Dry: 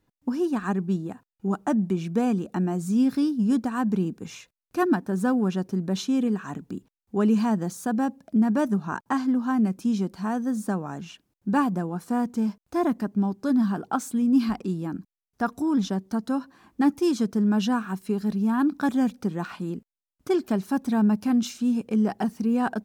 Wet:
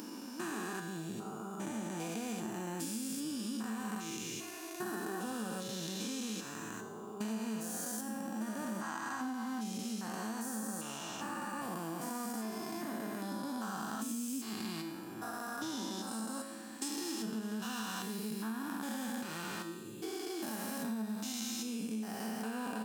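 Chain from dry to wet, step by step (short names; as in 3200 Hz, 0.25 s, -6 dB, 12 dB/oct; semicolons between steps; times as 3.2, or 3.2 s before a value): stepped spectrum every 0.4 s; 16.07–16.88 bell 8100 Hz +9.5 dB 0.46 oct; flange 0.2 Hz, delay 2.2 ms, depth 5.9 ms, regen +86%; tilt +4 dB/oct; resonator 110 Hz, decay 0.96 s, harmonics all, mix 80%; compressor 6:1, threshold -53 dBFS, peak gain reduction 12.5 dB; gain +17 dB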